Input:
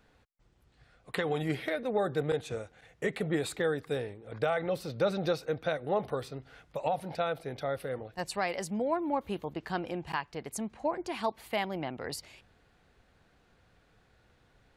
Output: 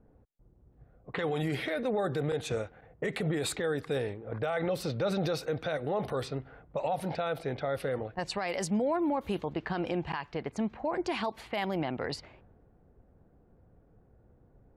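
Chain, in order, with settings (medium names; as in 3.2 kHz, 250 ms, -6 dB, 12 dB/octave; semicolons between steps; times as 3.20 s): level-controlled noise filter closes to 490 Hz, open at -29.5 dBFS; peak limiter -28.5 dBFS, peak gain reduction 10.5 dB; trim +6 dB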